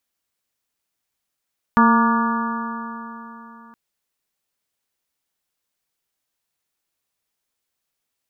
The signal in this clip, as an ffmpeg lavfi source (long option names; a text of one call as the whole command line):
ffmpeg -f lavfi -i "aevalsrc='0.224*pow(10,-3*t/3.5)*sin(2*PI*227.33*t)+0.0447*pow(10,-3*t/3.5)*sin(2*PI*456.63*t)+0.0335*pow(10,-3*t/3.5)*sin(2*PI*689.83*t)+0.158*pow(10,-3*t/3.5)*sin(2*PI*928.83*t)+0.188*pow(10,-3*t/3.5)*sin(2*PI*1175.42*t)+0.0794*pow(10,-3*t/3.5)*sin(2*PI*1431.33*t)+0.0596*pow(10,-3*t/3.5)*sin(2*PI*1698.15*t)':duration=1.97:sample_rate=44100" out.wav